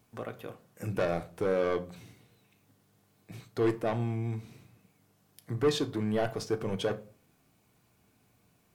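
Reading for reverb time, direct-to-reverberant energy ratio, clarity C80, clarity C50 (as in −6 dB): 0.40 s, 7.0 dB, 22.0 dB, 17.0 dB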